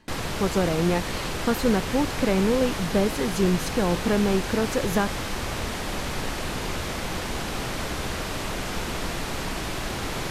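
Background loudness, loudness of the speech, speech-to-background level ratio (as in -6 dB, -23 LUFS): -30.0 LUFS, -25.0 LUFS, 5.0 dB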